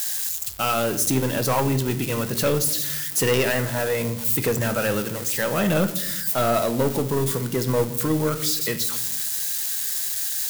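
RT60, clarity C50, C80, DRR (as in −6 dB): 0.90 s, 13.5 dB, 16.5 dB, 9.0 dB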